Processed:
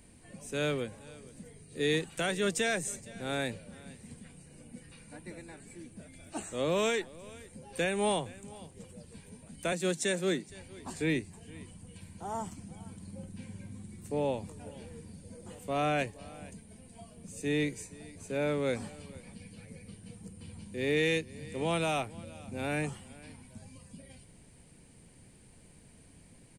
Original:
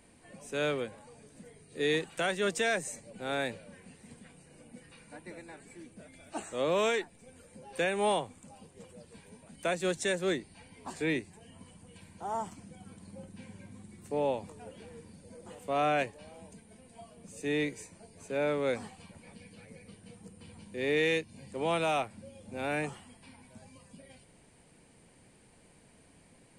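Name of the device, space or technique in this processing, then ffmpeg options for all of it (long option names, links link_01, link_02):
smiley-face EQ: -filter_complex "[0:a]lowshelf=frequency=190:gain=8.5,equalizer=frequency=860:width_type=o:width=2.1:gain=-3.5,highshelf=frequency=7100:gain=6,asettb=1/sr,asplit=3[link_01][link_02][link_03];[link_01]atrim=end=9.724[link_04];[link_02]atrim=start=9.72:end=10.49,asetpts=PTS-STARTPTS,afade=type=in:duration=0.004:curve=qsin,afade=type=out:start_time=0.766:duration=0.004:curve=qsin,highpass=frequency=150:width=0.5412,highpass=frequency=150:width=1.3066[link_05];[link_03]atrim=start=10.486[link_06];[link_04][link_05]acrossfade=duration=0.004:curve1=hsin:curve2=qsin[link_07];[link_07][link_06]acrossfade=duration=0.004:curve1=qsin:curve2=hsin,aecho=1:1:467:0.0891"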